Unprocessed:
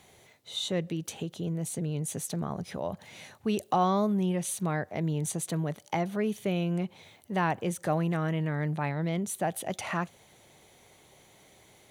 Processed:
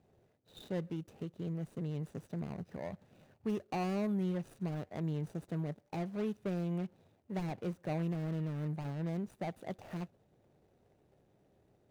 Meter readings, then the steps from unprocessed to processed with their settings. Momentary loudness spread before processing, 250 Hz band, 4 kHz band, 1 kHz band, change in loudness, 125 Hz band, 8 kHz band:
9 LU, −6.5 dB, −16.0 dB, −13.5 dB, −8.0 dB, −6.0 dB, below −25 dB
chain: running median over 41 samples
level −6 dB

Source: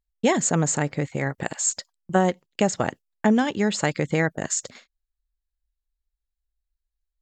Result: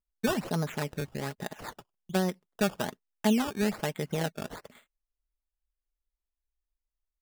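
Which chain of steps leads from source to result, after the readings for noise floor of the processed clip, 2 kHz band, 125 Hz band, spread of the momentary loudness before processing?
below −85 dBFS, −8.5 dB, −7.5 dB, 7 LU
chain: high-shelf EQ 4,700 Hz −9 dB
comb filter 4.8 ms, depth 45%
dynamic equaliser 6,400 Hz, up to −4 dB, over −40 dBFS, Q 1.4
sample-and-hold swept by an LFO 15×, swing 100% 1.2 Hz
level −8.5 dB

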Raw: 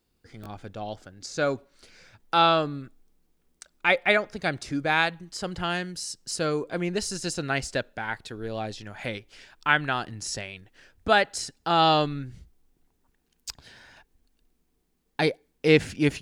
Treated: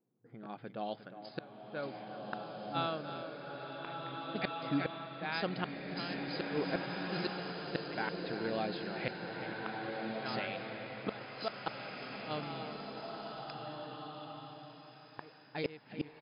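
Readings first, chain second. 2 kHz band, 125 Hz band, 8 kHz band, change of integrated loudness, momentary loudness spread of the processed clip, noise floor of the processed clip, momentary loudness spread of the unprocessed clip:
−14.0 dB, −11.0 dB, below −40 dB, −13.5 dB, 11 LU, −58 dBFS, 18 LU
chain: brick-wall band-pass 110–5,100 Hz
repeating echo 356 ms, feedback 27%, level −11.5 dB
gate with flip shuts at −18 dBFS, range −30 dB
low-pass that shuts in the quiet parts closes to 680 Hz, open at −31.5 dBFS
slow-attack reverb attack 1,800 ms, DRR 0.5 dB
level −4 dB

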